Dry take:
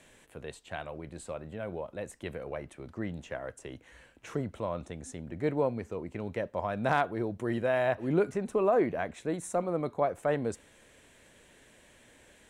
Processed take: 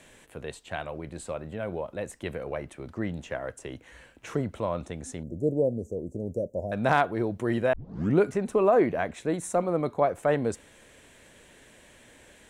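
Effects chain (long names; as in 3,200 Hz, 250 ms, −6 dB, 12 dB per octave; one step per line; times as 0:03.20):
0:05.23–0:06.72: elliptic band-stop filter 580–6,400 Hz, stop band 40 dB
0:07.73: tape start 0.44 s
level +4.5 dB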